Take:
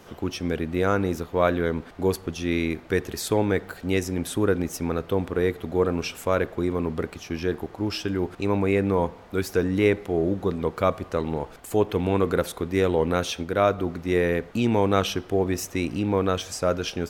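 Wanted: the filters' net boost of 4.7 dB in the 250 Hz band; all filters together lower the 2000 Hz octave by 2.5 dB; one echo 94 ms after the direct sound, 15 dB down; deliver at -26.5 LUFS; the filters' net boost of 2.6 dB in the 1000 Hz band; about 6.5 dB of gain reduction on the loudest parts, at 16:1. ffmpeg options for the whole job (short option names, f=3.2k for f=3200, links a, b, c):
-af "equalizer=f=250:t=o:g=6,equalizer=f=1k:t=o:g=4.5,equalizer=f=2k:t=o:g=-5,acompressor=threshold=-19dB:ratio=16,aecho=1:1:94:0.178"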